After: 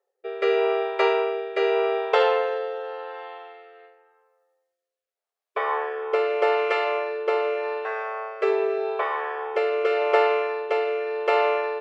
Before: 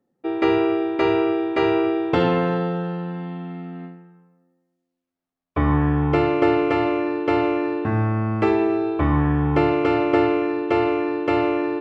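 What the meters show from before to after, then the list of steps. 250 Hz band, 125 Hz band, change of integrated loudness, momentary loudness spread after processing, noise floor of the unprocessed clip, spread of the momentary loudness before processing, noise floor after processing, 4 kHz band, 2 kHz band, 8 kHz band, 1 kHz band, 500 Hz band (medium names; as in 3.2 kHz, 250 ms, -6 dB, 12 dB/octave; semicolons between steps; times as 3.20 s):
-19.5 dB, under -40 dB, -3.0 dB, 11 LU, -81 dBFS, 10 LU, under -85 dBFS, +0.5 dB, +0.5 dB, no reading, -1.0 dB, -0.5 dB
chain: rotary cabinet horn 0.85 Hz; brick-wall FIR high-pass 380 Hz; trim +3 dB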